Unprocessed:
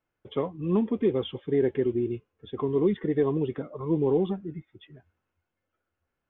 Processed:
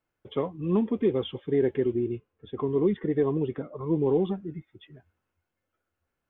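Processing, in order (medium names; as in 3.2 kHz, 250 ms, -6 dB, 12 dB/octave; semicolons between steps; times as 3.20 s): 1.96–4.06 s: distance through air 150 m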